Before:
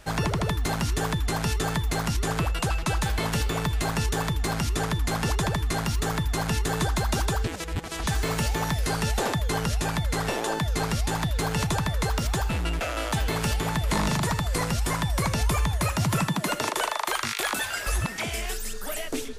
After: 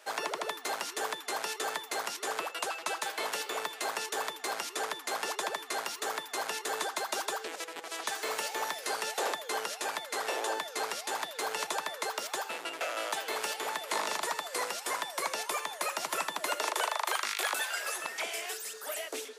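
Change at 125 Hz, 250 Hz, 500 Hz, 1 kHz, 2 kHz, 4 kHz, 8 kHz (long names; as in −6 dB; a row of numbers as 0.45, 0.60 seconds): below −40 dB, −19.5 dB, −5.5 dB, −4.0 dB, −4.0 dB, −4.0 dB, −4.0 dB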